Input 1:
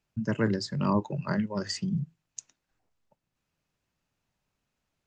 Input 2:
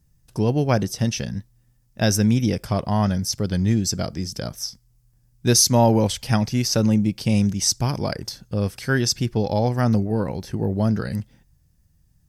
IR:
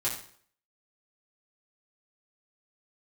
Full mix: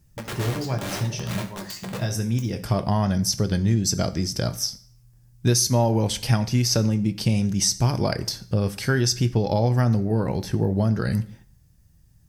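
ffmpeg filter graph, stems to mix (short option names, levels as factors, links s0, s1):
-filter_complex "[0:a]equalizer=f=440:t=o:w=2.6:g=-3,aeval=exprs='(mod(18.8*val(0)+1,2)-1)/18.8':c=same,volume=0.473,asplit=3[s0][s1][s2];[s1]volume=0.668[s3];[1:a]acompressor=threshold=0.0794:ratio=6,volume=1.33,asplit=2[s4][s5];[s5]volume=0.188[s6];[s2]apad=whole_len=541797[s7];[s4][s7]sidechaincompress=threshold=0.00447:ratio=8:attack=7.8:release=571[s8];[2:a]atrim=start_sample=2205[s9];[s3][s6]amix=inputs=2:normalize=0[s10];[s10][s9]afir=irnorm=-1:irlink=0[s11];[s0][s8][s11]amix=inputs=3:normalize=0"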